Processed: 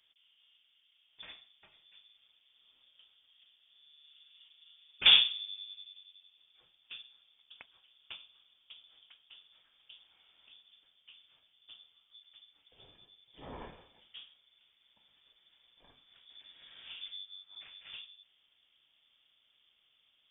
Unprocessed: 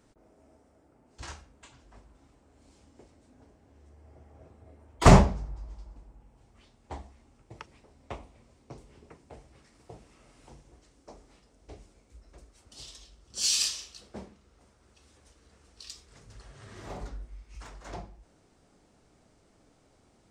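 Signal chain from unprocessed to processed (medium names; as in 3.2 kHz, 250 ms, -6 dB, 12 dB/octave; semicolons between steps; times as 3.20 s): frequency inversion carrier 3.5 kHz; trim -8 dB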